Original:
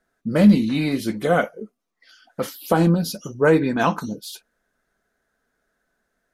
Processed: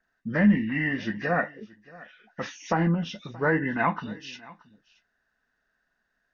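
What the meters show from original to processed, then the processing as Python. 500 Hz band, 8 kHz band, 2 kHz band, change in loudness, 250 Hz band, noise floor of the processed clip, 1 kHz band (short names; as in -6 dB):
-9.5 dB, -12.0 dB, 0.0 dB, -6.5 dB, -7.0 dB, -77 dBFS, -4.5 dB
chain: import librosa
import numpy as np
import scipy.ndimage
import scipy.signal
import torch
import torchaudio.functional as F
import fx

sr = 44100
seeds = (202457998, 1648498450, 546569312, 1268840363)

p1 = fx.freq_compress(x, sr, knee_hz=1400.0, ratio=1.5)
p2 = fx.peak_eq(p1, sr, hz=1800.0, db=14.0, octaves=0.69)
p3 = p2 + 0.34 * np.pad(p2, (int(1.1 * sr / 1000.0), 0))[:len(p2)]
p4 = p3 + fx.echo_single(p3, sr, ms=627, db=-22.0, dry=0)
p5 = fx.env_lowpass_down(p4, sr, base_hz=2300.0, full_db=-13.5)
y = p5 * librosa.db_to_amplitude(-7.5)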